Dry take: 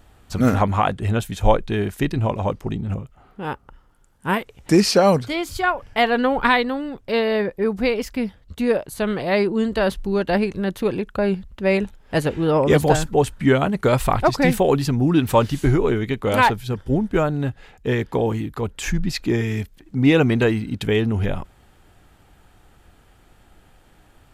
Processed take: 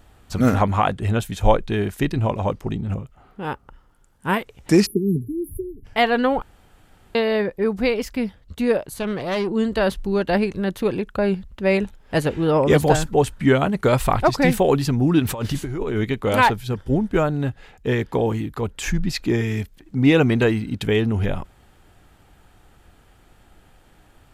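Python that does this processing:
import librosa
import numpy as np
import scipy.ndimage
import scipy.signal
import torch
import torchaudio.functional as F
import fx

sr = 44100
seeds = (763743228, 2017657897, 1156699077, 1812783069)

y = fx.brickwall_bandstop(x, sr, low_hz=430.0, high_hz=9800.0, at=(4.85, 5.84), fade=0.02)
y = fx.tube_stage(y, sr, drive_db=18.0, bias=0.45, at=(8.98, 9.51))
y = fx.over_compress(y, sr, threshold_db=-23.0, ratio=-1.0, at=(15.19, 16.03), fade=0.02)
y = fx.edit(y, sr, fx.room_tone_fill(start_s=6.42, length_s=0.73), tone=tone)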